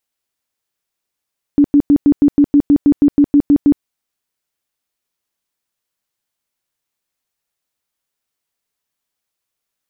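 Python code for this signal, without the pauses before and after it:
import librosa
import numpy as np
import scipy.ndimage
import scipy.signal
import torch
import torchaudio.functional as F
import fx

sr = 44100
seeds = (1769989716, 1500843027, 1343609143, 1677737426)

y = fx.tone_burst(sr, hz=288.0, cycles=18, every_s=0.16, bursts=14, level_db=-5.5)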